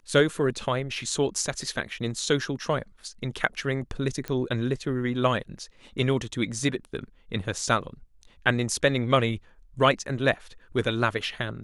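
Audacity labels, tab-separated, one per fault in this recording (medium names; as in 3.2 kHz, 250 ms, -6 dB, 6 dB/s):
4.280000	4.280000	pop -17 dBFS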